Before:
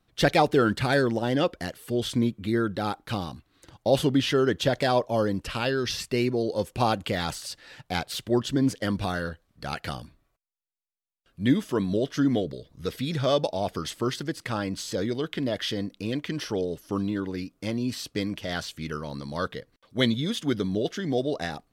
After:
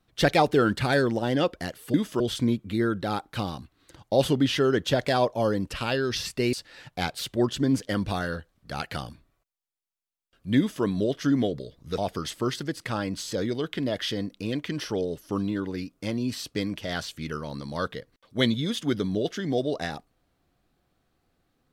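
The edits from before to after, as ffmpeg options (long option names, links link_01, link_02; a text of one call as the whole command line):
ffmpeg -i in.wav -filter_complex "[0:a]asplit=5[link_01][link_02][link_03][link_04][link_05];[link_01]atrim=end=1.942[link_06];[link_02]atrim=start=11.508:end=11.772[link_07];[link_03]atrim=start=1.938:end=6.272[link_08];[link_04]atrim=start=7.458:end=12.912[link_09];[link_05]atrim=start=13.578[link_10];[link_06][link_07]acrossfade=duration=0.004:curve1=hsin:curve2=hsin[link_11];[link_11][link_08]acrossfade=duration=0.004:curve1=hsin:curve2=hsin[link_12];[link_12][link_09]acrossfade=duration=0.004:curve1=hsin:curve2=hsin[link_13];[link_13][link_10]acrossfade=duration=0.004:curve1=hsin:curve2=hsin" out.wav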